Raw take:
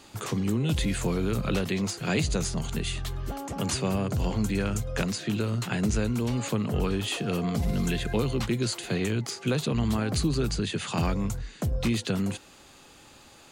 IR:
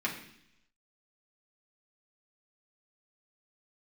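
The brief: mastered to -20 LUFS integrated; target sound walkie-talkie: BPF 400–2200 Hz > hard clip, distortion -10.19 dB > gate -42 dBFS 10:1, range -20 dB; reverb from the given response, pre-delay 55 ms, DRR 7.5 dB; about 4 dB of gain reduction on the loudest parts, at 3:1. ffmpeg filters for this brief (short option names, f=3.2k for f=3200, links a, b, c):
-filter_complex "[0:a]acompressor=threshold=-27dB:ratio=3,asplit=2[a][b];[1:a]atrim=start_sample=2205,adelay=55[c];[b][c]afir=irnorm=-1:irlink=0,volume=-14dB[d];[a][d]amix=inputs=2:normalize=0,highpass=400,lowpass=2.2k,asoftclip=type=hard:threshold=-35dB,agate=range=-20dB:threshold=-42dB:ratio=10,volume=20dB"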